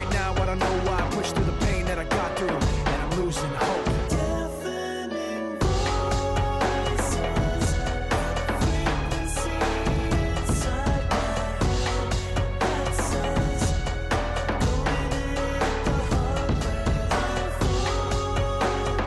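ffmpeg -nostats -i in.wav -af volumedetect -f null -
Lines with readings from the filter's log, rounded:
mean_volume: -24.5 dB
max_volume: -15.9 dB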